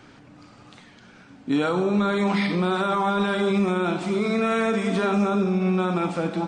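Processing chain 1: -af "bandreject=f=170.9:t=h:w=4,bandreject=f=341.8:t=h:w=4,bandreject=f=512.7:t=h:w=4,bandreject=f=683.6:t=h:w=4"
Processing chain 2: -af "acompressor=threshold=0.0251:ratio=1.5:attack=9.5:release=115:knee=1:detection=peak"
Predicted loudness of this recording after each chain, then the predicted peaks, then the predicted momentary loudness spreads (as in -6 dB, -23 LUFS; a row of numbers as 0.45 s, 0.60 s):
-23.0 LUFS, -27.5 LUFS; -13.0 dBFS, -18.0 dBFS; 3 LU, 2 LU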